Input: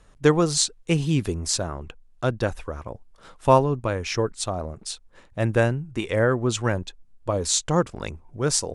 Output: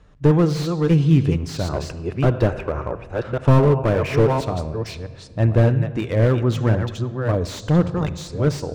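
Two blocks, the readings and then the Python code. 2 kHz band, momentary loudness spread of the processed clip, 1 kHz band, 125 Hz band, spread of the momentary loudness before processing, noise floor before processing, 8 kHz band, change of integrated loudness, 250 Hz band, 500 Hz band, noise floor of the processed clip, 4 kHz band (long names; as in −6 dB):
−1.0 dB, 11 LU, −0.5 dB, +9.0 dB, 16 LU, −54 dBFS, below −10 dB, +4.0 dB, +6.0 dB, +3.0 dB, −40 dBFS, −5.5 dB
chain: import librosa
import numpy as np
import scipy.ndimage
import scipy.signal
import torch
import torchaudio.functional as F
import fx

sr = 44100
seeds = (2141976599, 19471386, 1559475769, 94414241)

y = fx.reverse_delay(x, sr, ms=563, wet_db=-7.5)
y = scipy.signal.sosfilt(scipy.signal.butter(2, 43.0, 'highpass', fs=sr, output='sos'), y)
y = fx.spec_box(y, sr, start_s=1.74, length_s=2.58, low_hz=330.0, high_hz=3000.0, gain_db=7)
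y = scipy.signal.sosfilt(scipy.signal.butter(2, 4900.0, 'lowpass', fs=sr, output='sos'), y)
y = fx.low_shelf(y, sr, hz=260.0, db=8.5)
y = fx.room_shoebox(y, sr, seeds[0], volume_m3=2700.0, walls='mixed', distance_m=0.44)
y = fx.slew_limit(y, sr, full_power_hz=99.0)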